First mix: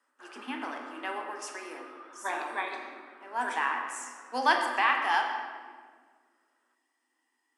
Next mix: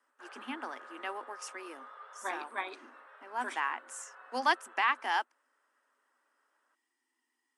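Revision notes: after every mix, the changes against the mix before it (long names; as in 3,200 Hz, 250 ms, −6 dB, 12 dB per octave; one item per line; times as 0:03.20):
reverb: off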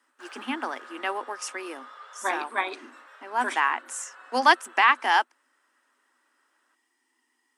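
speech +9.5 dB
background: remove head-to-tape spacing loss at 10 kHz 35 dB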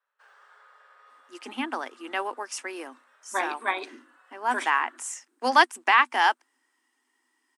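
speech: entry +1.10 s
background −11.0 dB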